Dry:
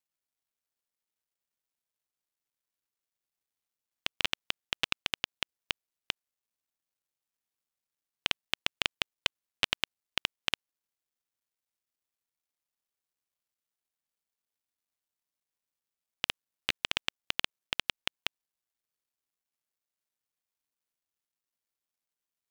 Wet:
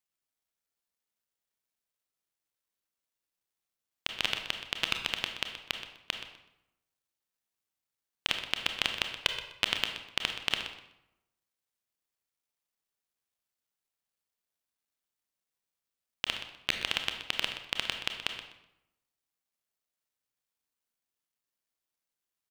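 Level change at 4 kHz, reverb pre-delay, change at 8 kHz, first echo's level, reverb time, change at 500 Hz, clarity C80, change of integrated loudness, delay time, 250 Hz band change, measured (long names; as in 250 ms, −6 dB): +1.5 dB, 25 ms, +1.0 dB, −12.5 dB, 0.85 s, +1.5 dB, 8.0 dB, +1.0 dB, 125 ms, +1.5 dB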